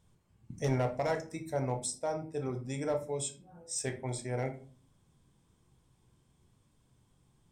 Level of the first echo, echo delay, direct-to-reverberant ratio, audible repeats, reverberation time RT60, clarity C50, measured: none, none, 5.0 dB, none, 0.40 s, 11.5 dB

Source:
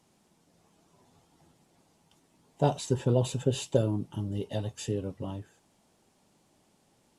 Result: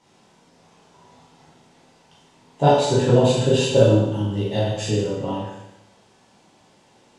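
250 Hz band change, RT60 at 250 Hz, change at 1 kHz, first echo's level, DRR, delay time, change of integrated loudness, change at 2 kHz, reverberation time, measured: +10.5 dB, 0.95 s, +14.0 dB, none, -8.0 dB, none, +11.5 dB, +15.5 dB, 0.95 s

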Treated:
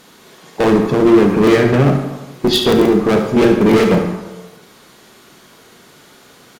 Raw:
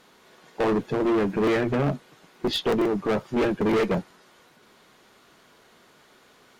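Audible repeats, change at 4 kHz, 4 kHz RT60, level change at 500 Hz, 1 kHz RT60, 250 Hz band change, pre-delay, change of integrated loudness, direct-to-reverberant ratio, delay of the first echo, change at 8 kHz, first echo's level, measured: 1, +12.0 dB, 0.70 s, +11.5 dB, 1.1 s, +12.5 dB, 27 ms, +12.0 dB, 4.0 dB, 72 ms, +15.0 dB, -11.0 dB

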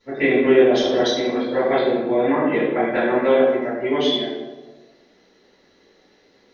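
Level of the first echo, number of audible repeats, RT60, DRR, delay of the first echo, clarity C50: none, none, 1.3 s, -15.5 dB, none, 0.5 dB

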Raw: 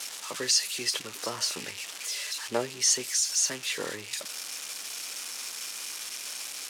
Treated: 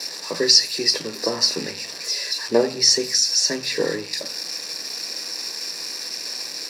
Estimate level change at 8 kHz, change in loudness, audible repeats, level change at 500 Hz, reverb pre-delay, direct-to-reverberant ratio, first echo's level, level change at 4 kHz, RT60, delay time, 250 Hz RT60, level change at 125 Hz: +3.0 dB, +8.5 dB, none, +13.0 dB, 3 ms, 8.5 dB, none, +11.0 dB, 0.45 s, none, 0.80 s, +9.0 dB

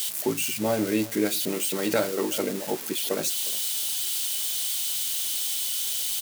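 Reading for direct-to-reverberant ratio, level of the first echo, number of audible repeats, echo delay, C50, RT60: none, -20.5 dB, 1, 0.356 s, none, none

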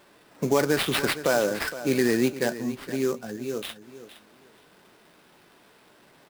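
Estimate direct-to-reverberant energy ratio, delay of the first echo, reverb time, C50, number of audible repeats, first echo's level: none, 0.465 s, none, none, 2, -14.0 dB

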